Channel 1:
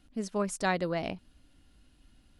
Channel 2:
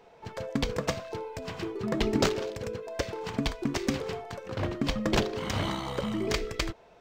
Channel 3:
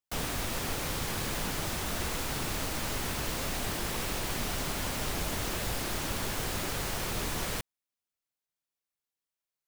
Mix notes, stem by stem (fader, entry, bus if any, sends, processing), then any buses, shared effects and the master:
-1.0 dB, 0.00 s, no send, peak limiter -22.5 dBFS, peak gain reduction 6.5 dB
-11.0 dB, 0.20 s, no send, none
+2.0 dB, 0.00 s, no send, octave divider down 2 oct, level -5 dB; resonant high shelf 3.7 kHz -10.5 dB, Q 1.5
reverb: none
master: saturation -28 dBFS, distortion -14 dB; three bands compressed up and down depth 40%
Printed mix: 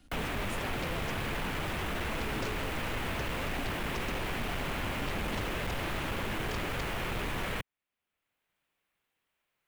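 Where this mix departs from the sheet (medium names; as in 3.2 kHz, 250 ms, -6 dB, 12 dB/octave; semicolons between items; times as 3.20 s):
stem 1 -1.0 dB -> -9.0 dB; stem 3: missing octave divider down 2 oct, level -5 dB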